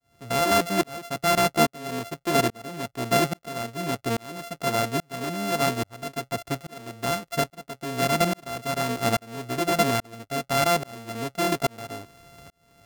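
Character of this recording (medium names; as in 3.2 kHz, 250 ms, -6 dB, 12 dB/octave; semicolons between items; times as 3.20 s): a buzz of ramps at a fixed pitch in blocks of 64 samples; tremolo saw up 1.2 Hz, depth 100%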